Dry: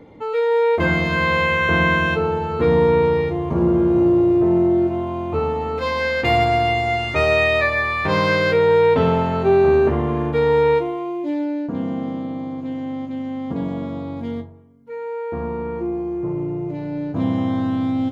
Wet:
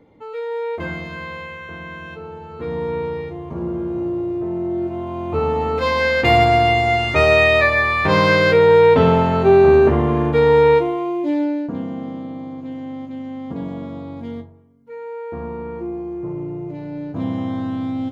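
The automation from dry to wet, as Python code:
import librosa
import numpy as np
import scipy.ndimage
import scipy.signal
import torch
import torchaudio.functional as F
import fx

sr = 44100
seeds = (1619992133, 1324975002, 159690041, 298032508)

y = fx.gain(x, sr, db=fx.line((0.77, -8.0), (1.8, -17.5), (2.96, -8.0), (4.56, -8.0), (5.6, 3.5), (11.45, 3.5), (11.88, -3.0)))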